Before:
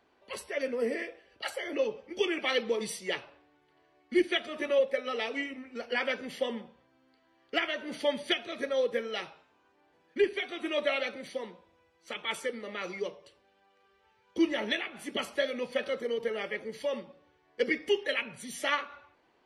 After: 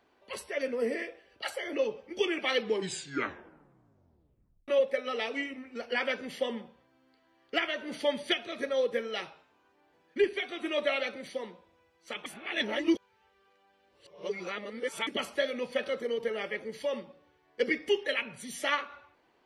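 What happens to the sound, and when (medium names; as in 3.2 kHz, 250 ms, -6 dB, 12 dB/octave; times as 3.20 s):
2.59 s: tape stop 2.09 s
12.26–15.07 s: reverse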